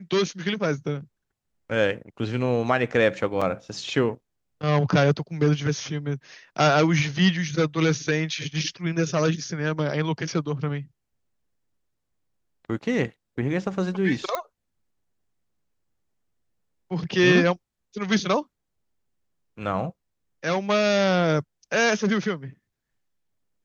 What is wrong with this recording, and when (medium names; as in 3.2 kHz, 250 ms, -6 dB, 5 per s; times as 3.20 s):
3.41–3.42 s: dropout 5.3 ms
14.35 s: pop -12 dBFS